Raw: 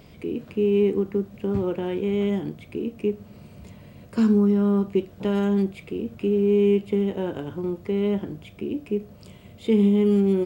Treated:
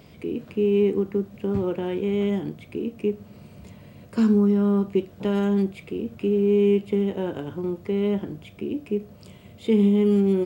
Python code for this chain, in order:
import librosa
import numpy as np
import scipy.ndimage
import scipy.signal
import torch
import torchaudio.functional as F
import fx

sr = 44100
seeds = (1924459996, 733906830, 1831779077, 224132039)

y = scipy.signal.sosfilt(scipy.signal.butter(2, 62.0, 'highpass', fs=sr, output='sos'), x)